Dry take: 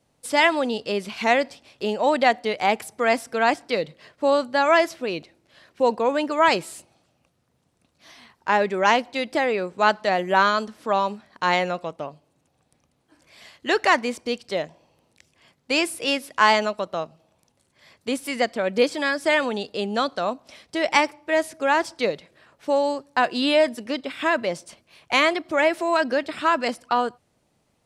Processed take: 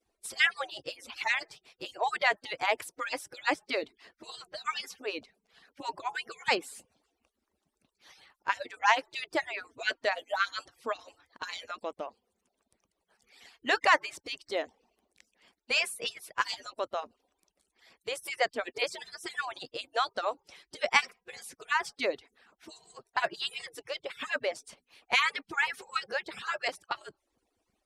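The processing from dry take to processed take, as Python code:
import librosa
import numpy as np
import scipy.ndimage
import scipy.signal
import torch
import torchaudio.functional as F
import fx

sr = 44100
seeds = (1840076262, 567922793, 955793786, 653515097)

y = fx.hpss_only(x, sr, part='percussive')
y = fx.dynamic_eq(y, sr, hz=1800.0, q=0.79, threshold_db=-33.0, ratio=4.0, max_db=3)
y = F.gain(torch.from_numpy(y), -5.5).numpy()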